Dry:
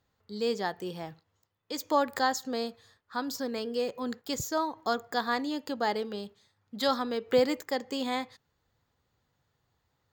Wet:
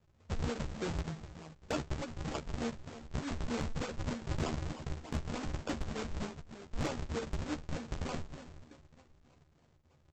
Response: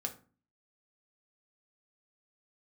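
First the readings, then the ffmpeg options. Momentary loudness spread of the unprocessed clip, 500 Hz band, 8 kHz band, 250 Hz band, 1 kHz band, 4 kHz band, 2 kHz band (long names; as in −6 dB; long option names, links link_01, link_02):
12 LU, −11.5 dB, −7.5 dB, −5.5 dB, −13.0 dB, −10.5 dB, −9.0 dB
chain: -filter_complex "[0:a]bandreject=frequency=224.2:width_type=h:width=4,bandreject=frequency=448.4:width_type=h:width=4,bandreject=frequency=672.6:width_type=h:width=4,bandreject=frequency=896.8:width_type=h:width=4,bandreject=frequency=1121:width_type=h:width=4,bandreject=frequency=1345.2:width_type=h:width=4,bandreject=frequency=1569.4:width_type=h:width=4,bandreject=frequency=1793.6:width_type=h:width=4,bandreject=frequency=2017.8:width_type=h:width=4,bandreject=frequency=2242:width_type=h:width=4,bandreject=frequency=2466.2:width_type=h:width=4,bandreject=frequency=2690.4:width_type=h:width=4,bandreject=frequency=2914.6:width_type=h:width=4,bandreject=frequency=3138.8:width_type=h:width=4,bandreject=frequency=3363:width_type=h:width=4,bandreject=frequency=3587.2:width_type=h:width=4,bandreject=frequency=3811.4:width_type=h:width=4,bandreject=frequency=4035.6:width_type=h:width=4,bandreject=frequency=4259.8:width_type=h:width=4,acompressor=threshold=-36dB:ratio=6,flanger=delay=7.6:depth=6.5:regen=-53:speed=0.31:shape=sinusoidal,acrossover=split=170|3000[link_01][link_02][link_03];[link_02]acompressor=threshold=-48dB:ratio=6[link_04];[link_01][link_04][link_03]amix=inputs=3:normalize=0,asplit=2[link_05][link_06];[link_06]adelay=396,lowpass=frequency=4100:poles=1,volume=-13dB,asplit=2[link_07][link_08];[link_08]adelay=396,lowpass=frequency=4100:poles=1,volume=0.38,asplit=2[link_09][link_10];[link_10]adelay=396,lowpass=frequency=4100:poles=1,volume=0.38,asplit=2[link_11][link_12];[link_12]adelay=396,lowpass=frequency=4100:poles=1,volume=0.38[link_13];[link_05][link_07][link_09][link_11][link_13]amix=inputs=5:normalize=0,aresample=16000,acrusher=samples=40:mix=1:aa=0.000001:lfo=1:lforange=64:lforate=3.3,aresample=44100,asoftclip=type=hard:threshold=-38dB,asplit=2[link_14][link_15];[link_15]adelay=13,volume=-5.5dB[link_16];[link_14][link_16]amix=inputs=2:normalize=0,volume=11.5dB"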